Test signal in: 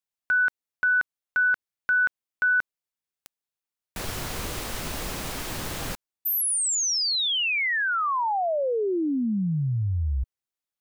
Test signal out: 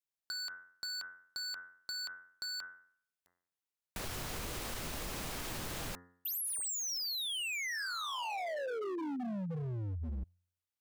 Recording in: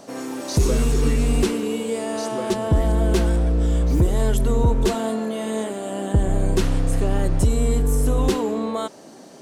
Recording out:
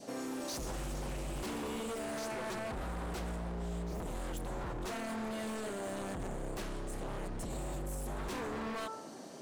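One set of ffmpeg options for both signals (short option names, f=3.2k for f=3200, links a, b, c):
-af "bandreject=f=88.58:t=h:w=4,bandreject=f=177.16:t=h:w=4,bandreject=f=265.74:t=h:w=4,bandreject=f=354.32:t=h:w=4,bandreject=f=442.9:t=h:w=4,bandreject=f=531.48:t=h:w=4,bandreject=f=620.06:t=h:w=4,bandreject=f=708.64:t=h:w=4,bandreject=f=797.22:t=h:w=4,bandreject=f=885.8:t=h:w=4,bandreject=f=974.38:t=h:w=4,bandreject=f=1.06296k:t=h:w=4,bandreject=f=1.15154k:t=h:w=4,bandreject=f=1.24012k:t=h:w=4,bandreject=f=1.3287k:t=h:w=4,bandreject=f=1.41728k:t=h:w=4,bandreject=f=1.50586k:t=h:w=4,bandreject=f=1.59444k:t=h:w=4,bandreject=f=1.68302k:t=h:w=4,bandreject=f=1.7716k:t=h:w=4,bandreject=f=1.86018k:t=h:w=4,bandreject=f=1.94876k:t=h:w=4,bandreject=f=2.03734k:t=h:w=4,adynamicequalizer=threshold=0.0158:dfrequency=1200:dqfactor=1.8:tfrequency=1200:tqfactor=1.8:attack=5:release=100:ratio=0.4:range=2.5:mode=boostabove:tftype=bell,alimiter=limit=-17.5dB:level=0:latency=1:release=28,aeval=exprs='0.0596*(abs(mod(val(0)/0.0596+3,4)-2)-1)':c=same,acompressor=threshold=-31dB:ratio=6:attack=5.5:release=207:knee=1:detection=peak,volume=-5dB"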